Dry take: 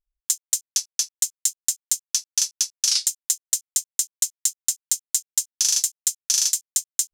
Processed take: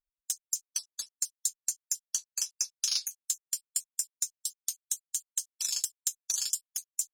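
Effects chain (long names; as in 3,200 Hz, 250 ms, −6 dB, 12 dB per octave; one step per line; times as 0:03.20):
time-frequency cells dropped at random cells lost 33%
harmonic generator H 4 −45 dB, 5 −25 dB, 7 −24 dB, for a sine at −5.5 dBFS
notch filter 2,000 Hz, Q 8.1
level −8 dB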